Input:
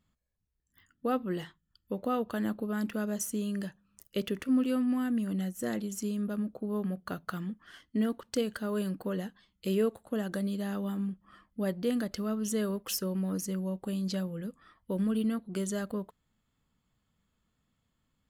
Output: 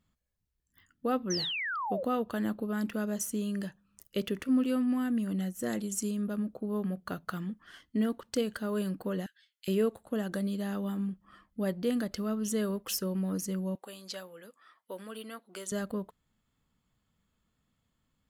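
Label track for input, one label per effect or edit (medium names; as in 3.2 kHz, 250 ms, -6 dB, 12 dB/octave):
1.300000	2.040000	painted sound fall 490–6300 Hz -34 dBFS
5.690000	6.110000	peaking EQ 8.7 kHz +8.5 dB 0.86 oct
9.260000	9.680000	elliptic high-pass 1.5 kHz
13.750000	15.720000	high-pass 620 Hz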